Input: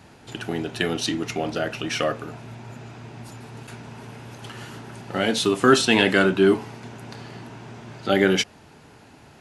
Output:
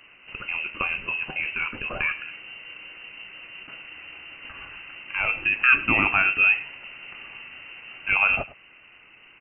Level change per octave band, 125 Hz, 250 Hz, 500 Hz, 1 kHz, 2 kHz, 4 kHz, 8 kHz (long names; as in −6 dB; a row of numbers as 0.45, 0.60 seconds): −11.5 dB, −15.0 dB, −18.0 dB, −3.0 dB, +5.0 dB, −9.5 dB, below −40 dB